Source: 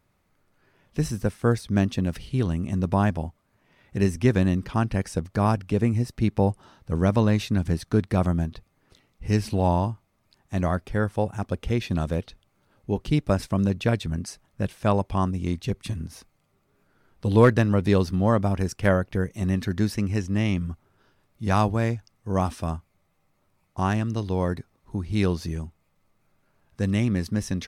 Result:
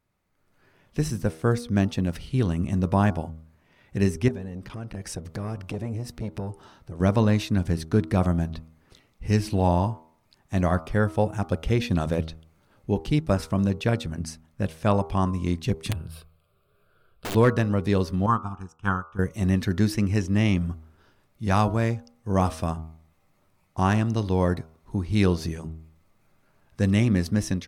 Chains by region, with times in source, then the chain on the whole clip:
0:04.28–0:07.00: downward compressor 2.5 to 1, threshold −32 dBFS + saturating transformer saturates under 350 Hz
0:15.91–0:17.35: phaser with its sweep stopped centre 1,300 Hz, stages 8 + wrap-around overflow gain 24 dB
0:18.26–0:19.19: flat-topped bell 990 Hz +9.5 dB 1.3 octaves + phaser with its sweep stopped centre 3,000 Hz, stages 8 + expander for the loud parts 2.5 to 1, over −29 dBFS
whole clip: hum removal 79.81 Hz, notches 18; automatic gain control gain up to 11.5 dB; level −7.5 dB

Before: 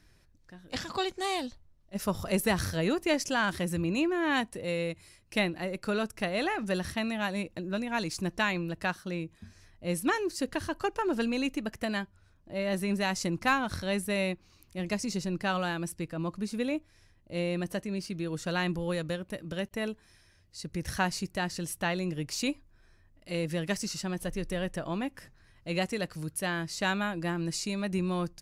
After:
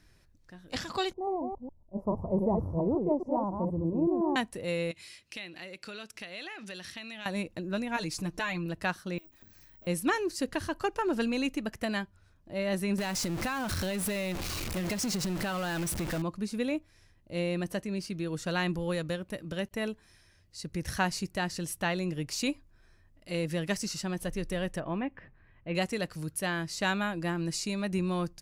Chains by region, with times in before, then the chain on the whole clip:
0:01.13–0:04.36: delay that plays each chunk backwards 140 ms, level −4 dB + elliptic low-pass filter 980 Hz
0:04.91–0:07.26: meter weighting curve D + downward compressor 3 to 1, threshold −44 dBFS
0:07.96–0:08.66: comb filter 6.6 ms, depth 84% + downward compressor 2 to 1, threshold −33 dBFS
0:09.18–0:09.87: lower of the sound and its delayed copy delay 3.2 ms + bad sample-rate conversion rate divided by 2×, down filtered, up zero stuff + downward compressor 8 to 1, threshold −50 dBFS
0:12.98–0:16.22: converter with a step at zero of −29.5 dBFS + downward compressor 10 to 1, threshold −28 dBFS
0:24.80–0:25.75: low-pass filter 2,600 Hz 24 dB per octave + notch filter 1,400 Hz, Q 11
whole clip: no processing

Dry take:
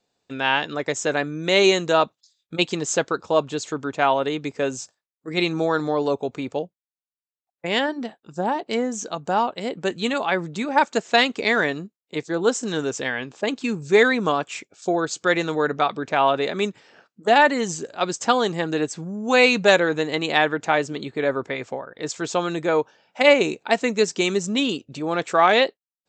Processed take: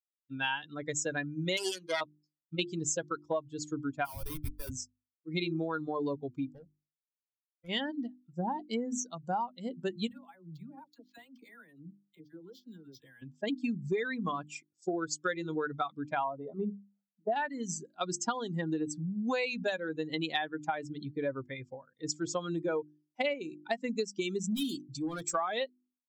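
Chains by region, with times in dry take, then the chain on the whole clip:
0:01.57–0:02.01: phase distortion by the signal itself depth 0.39 ms + high-pass filter 470 Hz 6 dB per octave + high-frequency loss of the air 54 metres
0:04.05–0:04.70: Bessel high-pass filter 930 Hz + comparator with hysteresis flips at −34.5 dBFS
0:06.45–0:07.69: amplitude modulation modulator 99 Hz, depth 55% + gain into a clipping stage and back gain 29 dB
0:10.07–0:13.22: downward compressor, threshold −32 dBFS + all-pass dispersion lows, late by 48 ms, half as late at 840 Hz + linearly interpolated sample-rate reduction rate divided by 4×
0:16.24–0:17.32: Savitzky-Golay smoothing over 65 samples + mains-hum notches 60/120/180/240/300/360/420 Hz
0:24.51–0:25.35: high-shelf EQ 4,200 Hz +11 dB + notch filter 2,800 Hz, Q 8.3 + hard clipping −23 dBFS
whole clip: spectral dynamics exaggerated over time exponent 2; mains-hum notches 50/100/150/200/250/300/350 Hz; downward compressor 16 to 1, threshold −32 dBFS; level +3 dB

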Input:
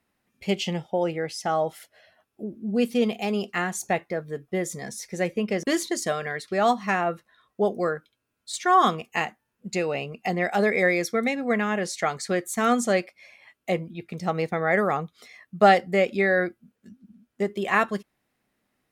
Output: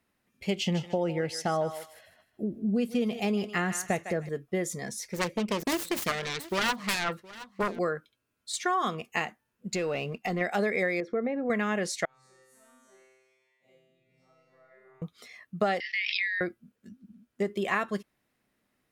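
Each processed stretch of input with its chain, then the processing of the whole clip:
0:00.57–0:04.29: low-shelf EQ 210 Hz +8 dB + feedback echo with a high-pass in the loop 154 ms, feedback 26%, high-pass 930 Hz, level −10 dB
0:05.13–0:07.79: phase distortion by the signal itself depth 0.95 ms + single-tap delay 717 ms −22 dB
0:09.70–0:10.41: parametric band 9,900 Hz −4.5 dB 0.22 octaves + leveller curve on the samples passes 1 + downward compressor 2 to 1, threshold −29 dBFS
0:11.00–0:11.50: low-pass filter 1,700 Hz + parametric band 470 Hz +9.5 dB 2 octaves + downward compressor 2 to 1, threshold −32 dBFS
0:12.05–0:15.02: spectrum smeared in time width 95 ms + downward compressor 2.5 to 1, threshold −40 dBFS + tuned comb filter 130 Hz, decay 1.4 s, mix 100%
0:15.80–0:16.41: Chebyshev band-pass filter 1,800–5,600 Hz, order 5 + background raised ahead of every attack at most 26 dB per second
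whole clip: parametric band 790 Hz −3 dB 0.27 octaves; downward compressor 6 to 1, threshold −23 dBFS; level −1 dB

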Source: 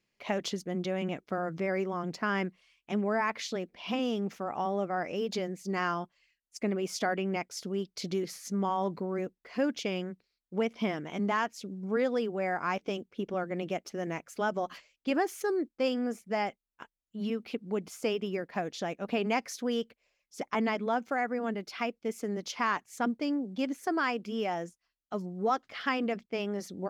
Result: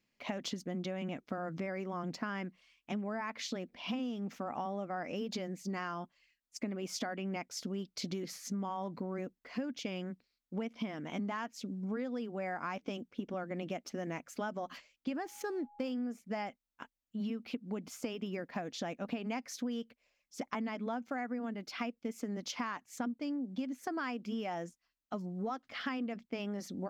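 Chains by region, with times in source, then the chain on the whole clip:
0:15.23–0:15.91: slack as between gear wheels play −49 dBFS + steady tone 830 Hz −54 dBFS
whole clip: thirty-one-band graphic EQ 250 Hz +8 dB, 400 Hz −5 dB, 10,000 Hz −6 dB; downward compressor 10 to 1, threshold −33 dBFS; level −1 dB

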